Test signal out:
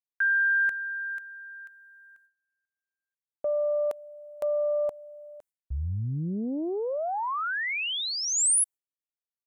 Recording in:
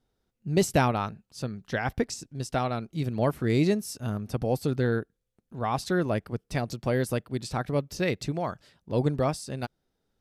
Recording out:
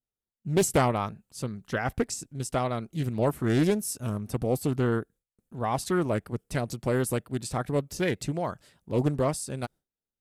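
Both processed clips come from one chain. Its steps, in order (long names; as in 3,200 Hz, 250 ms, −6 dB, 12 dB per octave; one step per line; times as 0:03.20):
noise gate with hold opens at −58 dBFS
high shelf with overshoot 6,600 Hz +6 dB, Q 1.5
highs frequency-modulated by the lows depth 0.46 ms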